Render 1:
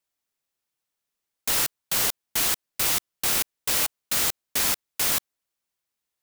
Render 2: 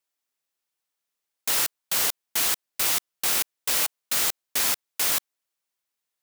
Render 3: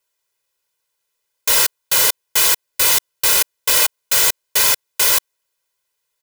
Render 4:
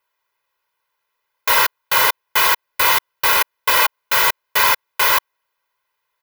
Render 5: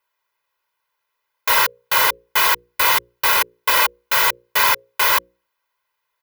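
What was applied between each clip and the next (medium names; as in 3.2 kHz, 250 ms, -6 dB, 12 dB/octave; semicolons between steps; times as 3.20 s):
bass shelf 230 Hz -9.5 dB
comb 2 ms, depth 93%; trim +6.5 dB
graphic EQ 1/2/8 kHz +11/+5/-11 dB; trim -1 dB
hum notches 60/120/180/240/300/360/420/480/540 Hz; trim -1 dB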